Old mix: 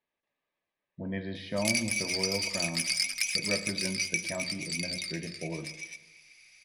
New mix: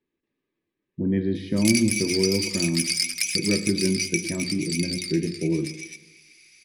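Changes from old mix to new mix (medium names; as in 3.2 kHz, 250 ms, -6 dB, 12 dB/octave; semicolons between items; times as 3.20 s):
background: add tilt EQ +2 dB/octave; master: add resonant low shelf 480 Hz +10 dB, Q 3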